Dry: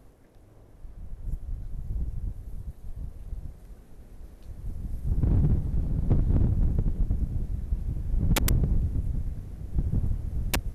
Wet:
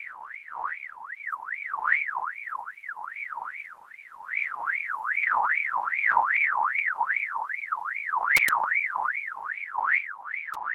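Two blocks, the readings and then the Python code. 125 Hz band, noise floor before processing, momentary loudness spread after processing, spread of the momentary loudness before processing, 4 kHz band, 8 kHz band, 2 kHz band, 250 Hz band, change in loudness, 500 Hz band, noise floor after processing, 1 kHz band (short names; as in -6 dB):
under -35 dB, -53 dBFS, 15 LU, 17 LU, -2.5 dB, n/a, +22.5 dB, under -25 dB, +3.0 dB, -5.5 dB, -47 dBFS, +21.0 dB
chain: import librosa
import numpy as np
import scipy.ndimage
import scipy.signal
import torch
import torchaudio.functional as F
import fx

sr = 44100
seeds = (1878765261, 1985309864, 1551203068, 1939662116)

y = fx.fade_out_tail(x, sr, length_s=1.85)
y = fx.dmg_wind(y, sr, seeds[0], corner_hz=95.0, level_db=-30.0)
y = fx.ring_lfo(y, sr, carrier_hz=1600.0, swing_pct=45, hz=2.5)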